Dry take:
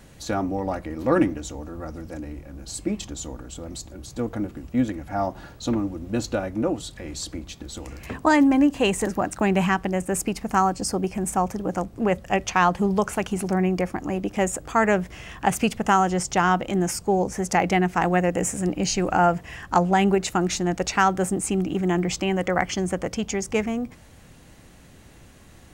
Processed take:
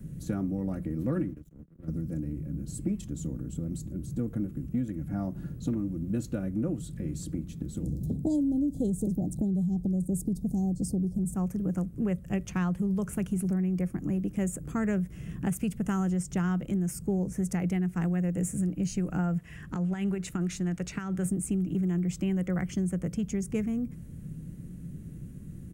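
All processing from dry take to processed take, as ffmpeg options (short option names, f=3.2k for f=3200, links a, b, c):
-filter_complex "[0:a]asettb=1/sr,asplit=3[a][b][c];[a]atrim=end=1.144[d];[b]atrim=start=1.14:end=1.88,asetpts=PTS-STARTPTS,afade=t=in:d=0.004:c=qsin,afade=t=out:st=0.736:d=0.004:c=qsin,agate=range=-33dB:threshold=-26dB:ratio=3:release=100:detection=peak,acrossover=split=2800[e][f];[f]acompressor=threshold=-50dB:ratio=4:attack=1:release=60[g];[e][g]amix=inputs=2:normalize=0,aeval=exprs='sgn(val(0))*max(abs(val(0))-0.00398,0)':c=same[h];[c]atrim=start=1.876[i];[d][h]acrossfade=d=0.004:c1=hsin:c2=qsin[j];[j][i]acrossfade=d=0.004:c1=qsin:c2=hsin,asettb=1/sr,asplit=3[k][l][m];[k]atrim=end=7.834[n];[l]atrim=start=7.83:end=11.35,asetpts=PTS-STARTPTS,afade=t=in:d=0.004:c=qsin,afade=t=out:st=3.516:d=0.004:c=qsin,asuperstop=centerf=1700:order=20:qfactor=0.66,lowshelf=f=350:g=10.5[o];[m]atrim=start=11.346[p];[n][o]acrossfade=d=0.004:c1=hsin:c2=qsin[q];[q][p]acrossfade=d=0.004:c1=qsin:c2=hsin,asettb=1/sr,asplit=3[r][s][t];[r]atrim=end=19.384[u];[s]atrim=start=19.38:end=21.25,asetpts=PTS-STARTPTS,afade=t=in:d=0.004:c=qsin,afade=t=out:st=1.866:d=0.004:c=qsin,lowpass=f=2.9k:p=1,tiltshelf=f=710:g=-8,acompressor=threshold=-20dB:ratio=10:attack=3.2:release=140:knee=1:detection=peak[v];[t]atrim=start=21.246[w];[u][v]acrossfade=d=0.004:c1=hsin:c2=qsin[x];[x][w]acrossfade=d=0.004:c1=qsin:c2=hsin,firequalizer=gain_entry='entry(100,0);entry(160,11);entry(220,1);entry(800,-27);entry(1400,-20);entry(4400,-25);entry(9500,-10)':delay=0.05:min_phase=1,alimiter=limit=-15dB:level=0:latency=1:release=206,acrossover=split=97|580[y][z][aa];[y]acompressor=threshold=-51dB:ratio=4[ab];[z]acompressor=threshold=-37dB:ratio=4[ac];[aa]acompressor=threshold=-37dB:ratio=4[ad];[ab][ac][ad]amix=inputs=3:normalize=0,volume=6dB"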